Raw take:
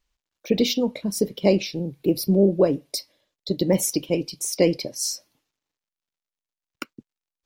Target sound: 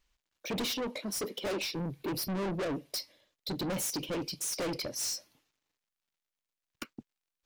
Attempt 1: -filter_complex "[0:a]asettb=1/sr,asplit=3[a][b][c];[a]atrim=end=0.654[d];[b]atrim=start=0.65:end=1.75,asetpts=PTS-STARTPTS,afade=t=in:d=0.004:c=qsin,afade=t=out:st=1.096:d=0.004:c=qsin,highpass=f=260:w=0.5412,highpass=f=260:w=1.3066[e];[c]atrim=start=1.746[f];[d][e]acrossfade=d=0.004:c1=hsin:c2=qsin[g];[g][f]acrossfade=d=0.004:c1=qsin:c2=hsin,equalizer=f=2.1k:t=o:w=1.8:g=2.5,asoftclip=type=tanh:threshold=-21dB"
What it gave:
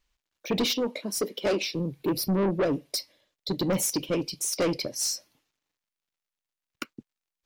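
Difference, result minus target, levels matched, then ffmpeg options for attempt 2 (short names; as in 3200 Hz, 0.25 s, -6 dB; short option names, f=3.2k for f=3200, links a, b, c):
soft clip: distortion -5 dB
-filter_complex "[0:a]asettb=1/sr,asplit=3[a][b][c];[a]atrim=end=0.654[d];[b]atrim=start=0.65:end=1.75,asetpts=PTS-STARTPTS,afade=t=in:d=0.004:c=qsin,afade=t=out:st=1.096:d=0.004:c=qsin,highpass=f=260:w=0.5412,highpass=f=260:w=1.3066[e];[c]atrim=start=1.746[f];[d][e]acrossfade=d=0.004:c1=hsin:c2=qsin[g];[g][f]acrossfade=d=0.004:c1=qsin:c2=hsin,equalizer=f=2.1k:t=o:w=1.8:g=2.5,asoftclip=type=tanh:threshold=-31.5dB"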